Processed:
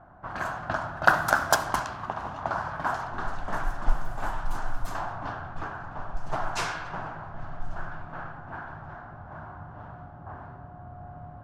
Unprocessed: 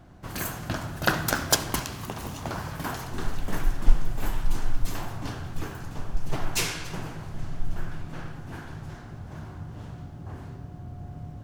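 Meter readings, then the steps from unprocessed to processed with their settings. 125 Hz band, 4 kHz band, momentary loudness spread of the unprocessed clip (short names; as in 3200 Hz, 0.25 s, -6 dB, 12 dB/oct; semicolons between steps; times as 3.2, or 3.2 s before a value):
-6.0 dB, -6.5 dB, 14 LU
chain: band shelf 1000 Hz +13 dB; low-pass opened by the level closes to 1800 Hz, open at -14.5 dBFS; gain -6 dB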